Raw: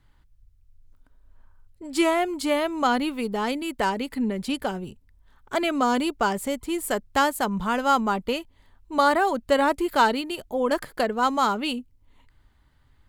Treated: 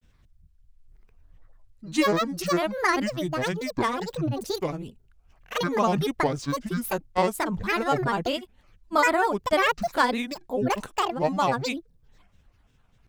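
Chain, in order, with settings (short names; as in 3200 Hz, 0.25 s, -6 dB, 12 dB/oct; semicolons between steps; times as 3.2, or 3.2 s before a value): grains, spray 29 ms, pitch spread up and down by 12 st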